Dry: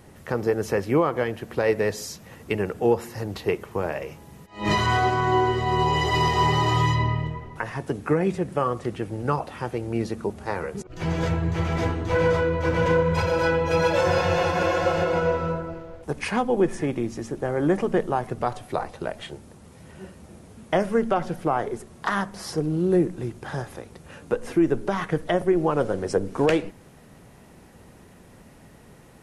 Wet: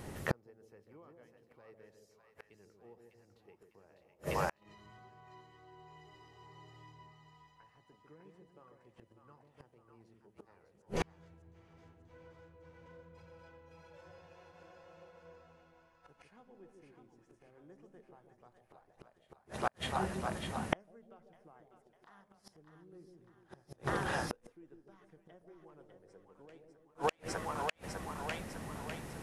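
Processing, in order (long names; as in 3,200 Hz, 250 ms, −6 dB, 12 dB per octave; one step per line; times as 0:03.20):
echo with a time of its own for lows and highs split 700 Hz, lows 148 ms, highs 601 ms, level −4 dB
gate with flip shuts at −22 dBFS, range −40 dB
level +2.5 dB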